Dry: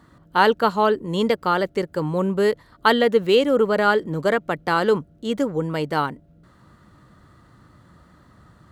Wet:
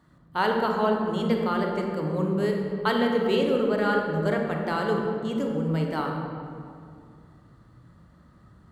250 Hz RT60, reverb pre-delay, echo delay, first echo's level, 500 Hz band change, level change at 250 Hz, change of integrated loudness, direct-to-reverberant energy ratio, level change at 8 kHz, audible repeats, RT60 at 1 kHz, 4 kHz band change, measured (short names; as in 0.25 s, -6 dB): 2.6 s, 26 ms, none, none, -5.5 dB, -1.5 dB, -5.0 dB, 1.0 dB, n/a, none, 2.2 s, -7.5 dB